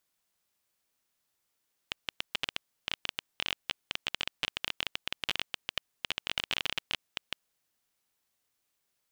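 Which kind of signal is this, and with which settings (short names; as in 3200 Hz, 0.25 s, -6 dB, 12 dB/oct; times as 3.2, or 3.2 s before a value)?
random clicks 15/s -12.5 dBFS 5.67 s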